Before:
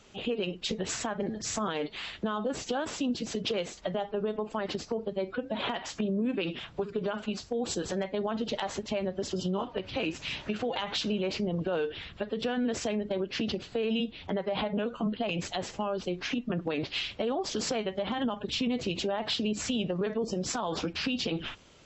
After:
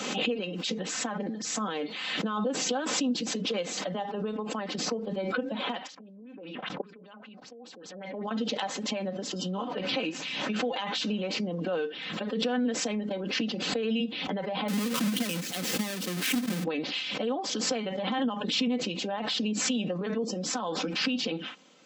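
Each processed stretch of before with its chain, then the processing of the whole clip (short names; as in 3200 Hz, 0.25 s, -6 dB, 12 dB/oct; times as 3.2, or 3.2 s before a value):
5.87–8.31 LFO low-pass sine 5.1 Hz 600–6200 Hz + level quantiser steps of 24 dB
14.68–16.64 half-waves squared off + bell 820 Hz -11.5 dB 1.7 oct
whole clip: steep high-pass 150 Hz; comb 3.9 ms, depth 53%; backwards sustainer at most 33 dB/s; gain -2 dB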